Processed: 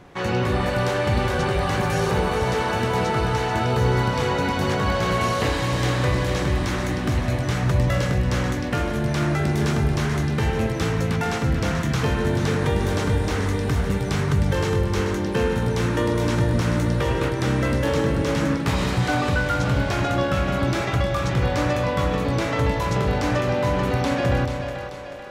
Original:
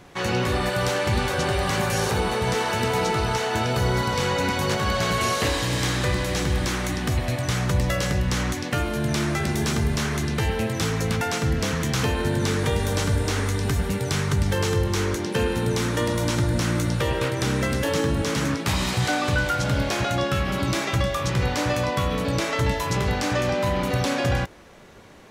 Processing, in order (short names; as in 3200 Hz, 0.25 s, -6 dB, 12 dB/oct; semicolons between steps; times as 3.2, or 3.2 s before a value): high shelf 3200 Hz -9.5 dB; split-band echo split 320 Hz, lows 0.169 s, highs 0.436 s, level -7.5 dB; gain +1.5 dB